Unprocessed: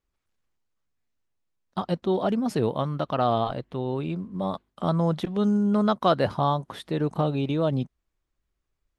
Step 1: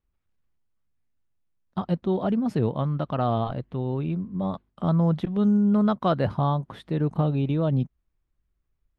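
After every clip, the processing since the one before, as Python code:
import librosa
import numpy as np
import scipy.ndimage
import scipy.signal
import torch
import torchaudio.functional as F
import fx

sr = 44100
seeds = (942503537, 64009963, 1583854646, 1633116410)

y = fx.bass_treble(x, sr, bass_db=8, treble_db=-9)
y = y * 10.0 ** (-3.0 / 20.0)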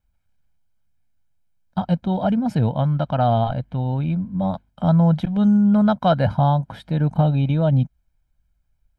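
y = x + 0.72 * np.pad(x, (int(1.3 * sr / 1000.0), 0))[:len(x)]
y = y * 10.0 ** (3.5 / 20.0)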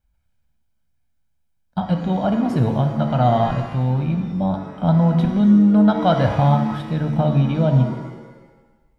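y = fx.rev_shimmer(x, sr, seeds[0], rt60_s=1.2, semitones=7, shimmer_db=-8, drr_db=5.0)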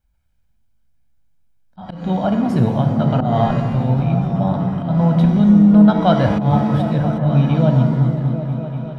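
y = fx.auto_swell(x, sr, attack_ms=188.0)
y = fx.echo_opening(y, sr, ms=246, hz=200, octaves=1, feedback_pct=70, wet_db=-3)
y = y * 10.0 ** (1.5 / 20.0)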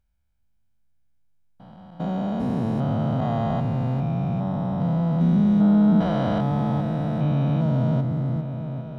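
y = fx.spec_steps(x, sr, hold_ms=400)
y = y * 10.0 ** (-5.5 / 20.0)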